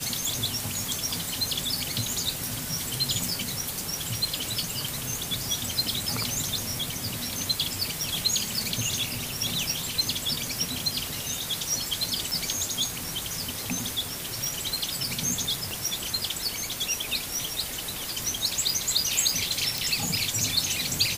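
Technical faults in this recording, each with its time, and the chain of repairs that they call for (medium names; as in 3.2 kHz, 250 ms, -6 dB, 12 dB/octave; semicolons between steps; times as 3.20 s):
3.29 s: pop
12.31 s: pop
15.71 s: pop
19.78 s: pop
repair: de-click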